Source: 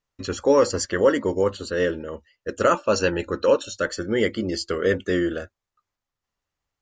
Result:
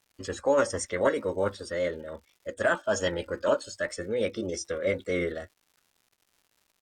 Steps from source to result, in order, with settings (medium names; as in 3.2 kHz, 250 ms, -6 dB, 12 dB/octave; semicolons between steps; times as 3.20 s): crackle 210 per s -45 dBFS; resampled via 32 kHz; formant shift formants +3 st; trim -6 dB